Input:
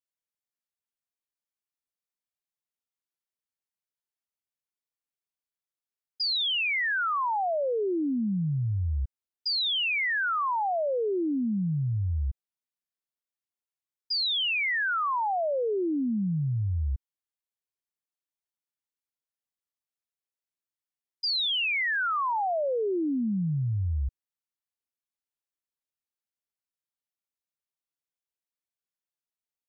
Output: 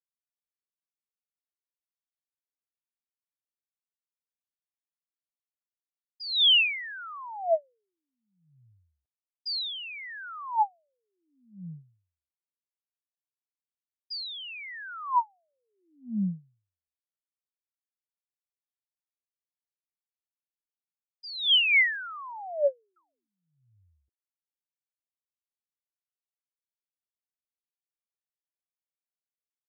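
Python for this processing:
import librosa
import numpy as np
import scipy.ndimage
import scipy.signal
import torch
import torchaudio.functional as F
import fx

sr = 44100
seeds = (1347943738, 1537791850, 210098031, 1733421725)

y = fx.spec_paint(x, sr, seeds[0], shape='fall', start_s=22.96, length_s=0.32, low_hz=250.0, high_hz=1400.0, level_db=-32.0)
y = fx.filter_lfo_highpass(y, sr, shape='sine', hz=0.66, low_hz=210.0, high_hz=3100.0, q=2.8)
y = fx.upward_expand(y, sr, threshold_db=-34.0, expansion=2.5)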